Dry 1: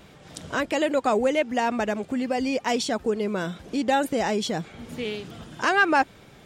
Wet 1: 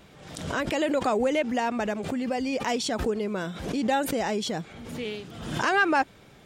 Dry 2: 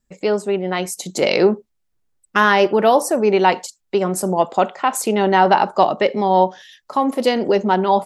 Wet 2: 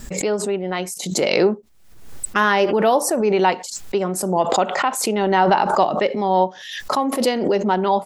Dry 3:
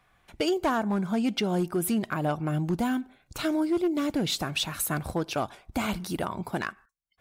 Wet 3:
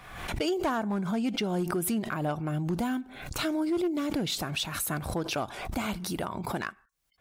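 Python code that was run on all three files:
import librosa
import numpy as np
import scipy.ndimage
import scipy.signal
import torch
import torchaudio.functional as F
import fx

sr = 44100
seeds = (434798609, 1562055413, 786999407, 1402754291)

y = fx.pre_swell(x, sr, db_per_s=57.0)
y = y * librosa.db_to_amplitude(-3.0)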